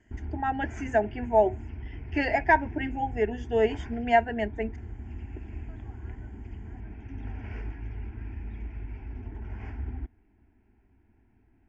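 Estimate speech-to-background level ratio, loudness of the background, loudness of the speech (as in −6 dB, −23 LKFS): 13.0 dB, −40.5 LKFS, −27.5 LKFS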